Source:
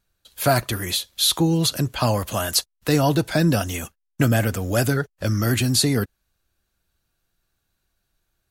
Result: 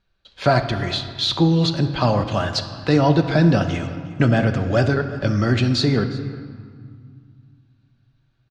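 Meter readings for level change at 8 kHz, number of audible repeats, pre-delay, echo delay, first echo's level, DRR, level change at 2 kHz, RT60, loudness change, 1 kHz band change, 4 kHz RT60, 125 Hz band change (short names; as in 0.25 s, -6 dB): -14.0 dB, 1, 5 ms, 0.359 s, -20.5 dB, 7.5 dB, +1.5 dB, 2.0 s, +1.5 dB, +3.0 dB, 1.3 s, +3.0 dB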